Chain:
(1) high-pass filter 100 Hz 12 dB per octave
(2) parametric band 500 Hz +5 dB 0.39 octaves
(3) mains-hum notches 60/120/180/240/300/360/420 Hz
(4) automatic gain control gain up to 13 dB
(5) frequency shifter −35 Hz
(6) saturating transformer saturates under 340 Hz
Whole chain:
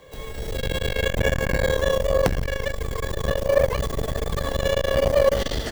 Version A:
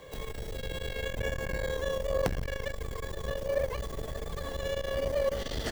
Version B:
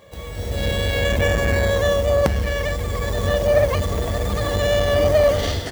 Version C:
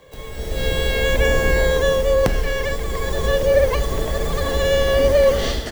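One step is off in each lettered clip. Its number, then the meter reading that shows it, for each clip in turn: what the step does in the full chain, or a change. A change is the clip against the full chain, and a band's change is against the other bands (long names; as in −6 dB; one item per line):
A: 4, change in crest factor +1.5 dB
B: 5, 125 Hz band +2.5 dB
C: 6, change in crest factor −4.5 dB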